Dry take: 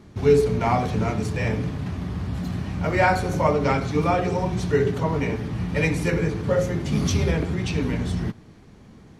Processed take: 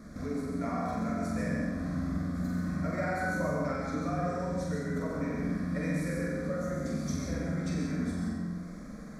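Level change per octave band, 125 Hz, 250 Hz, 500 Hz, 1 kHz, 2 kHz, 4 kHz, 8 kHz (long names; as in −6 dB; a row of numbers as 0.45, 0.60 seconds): −10.5, −5.5, −12.5, −12.0, −9.5, −14.5, −9.0 decibels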